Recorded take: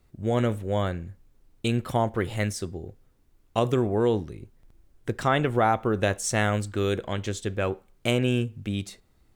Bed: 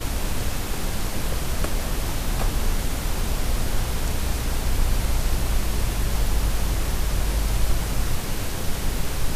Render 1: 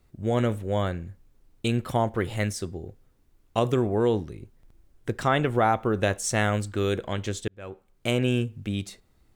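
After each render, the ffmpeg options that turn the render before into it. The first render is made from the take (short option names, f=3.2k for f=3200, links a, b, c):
-filter_complex "[0:a]asplit=2[a][b];[a]atrim=end=7.48,asetpts=PTS-STARTPTS,afade=t=out:st=7.476:d=0.004:c=hsin[c];[b]atrim=start=7.48,asetpts=PTS-STARTPTS,afade=t=in:d=0.73[d];[c][d]concat=n=2:v=0:a=1"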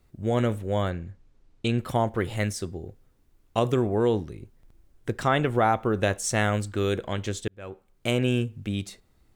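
-filter_complex "[0:a]asettb=1/sr,asplit=3[a][b][c];[a]atrim=end=0.904[d];[b]atrim=start=0.9:end=1.78,asetpts=PTS-STARTPTS,afade=t=in:d=0.004:c=qsin,afade=t=out:st=0.876:d=0.004:c=qsin,lowpass=6.4k[e];[c]atrim=start=1.776[f];[d][e]acrossfade=d=0.004:c1=hsin:c2=qsin[g];[g][f]acrossfade=d=0.004:c1=qsin:c2=hsin"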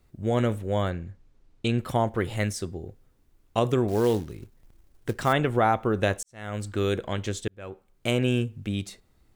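-filter_complex "[0:a]asettb=1/sr,asplit=3[a][b][c];[a]atrim=end=3.884[d];[b]atrim=start=3.88:end=5.33,asetpts=PTS-STARTPTS,afade=t=in:d=0.004:c=qsin,afade=t=out:st=1.446:d=0.004:c=qsin,acrusher=bits=5:mode=log:mix=0:aa=0.000001[e];[c]atrim=start=5.326[f];[d][e]acrossfade=d=0.004:c1=hsin:c2=qsin[g];[g][f]acrossfade=d=0.004:c1=qsin:c2=hsin,asplit=2[h][i];[h]atrim=end=6.23,asetpts=PTS-STARTPTS,afade=t=out:st=6.226:d=0.004:c=hsin[j];[i]atrim=start=6.23,asetpts=PTS-STARTPTS,afade=t=in:d=0.46:c=qua[k];[j][k]concat=n=2:v=0:a=1"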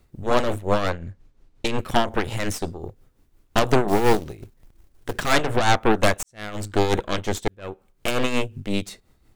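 -af "aeval=exprs='0.355*(cos(1*acos(clip(val(0)/0.355,-1,1)))-cos(1*PI/2))+0.0708*(cos(5*acos(clip(val(0)/0.355,-1,1)))-cos(5*PI/2))+0.158*(cos(8*acos(clip(val(0)/0.355,-1,1)))-cos(8*PI/2))':c=same,tremolo=f=5.6:d=0.59"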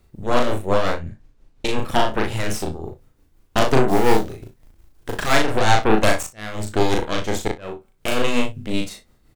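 -filter_complex "[0:a]asplit=2[a][b];[b]adelay=37,volume=-9dB[c];[a][c]amix=inputs=2:normalize=0,aecho=1:1:37|61:0.398|0.251"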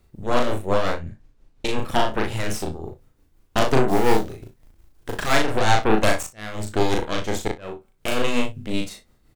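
-af "volume=-2dB"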